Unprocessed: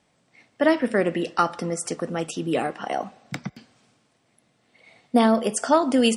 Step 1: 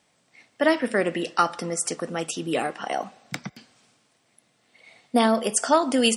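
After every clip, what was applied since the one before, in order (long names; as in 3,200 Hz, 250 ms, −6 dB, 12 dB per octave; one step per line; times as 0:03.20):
spectral tilt +1.5 dB per octave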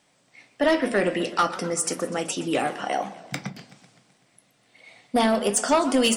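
on a send at −8 dB: convolution reverb RT60 0.25 s, pre-delay 3 ms
on the sum: soft clipping −14 dBFS, distortion −14 dB
feedback echo with a swinging delay time 127 ms, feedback 61%, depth 207 cents, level −16.5 dB
level +1.5 dB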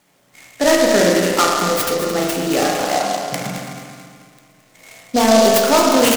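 repeating echo 218 ms, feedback 47%, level −10 dB
spring reverb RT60 1.7 s, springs 33/45 ms, chirp 65 ms, DRR −1.5 dB
short delay modulated by noise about 4,500 Hz, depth 0.061 ms
level +4.5 dB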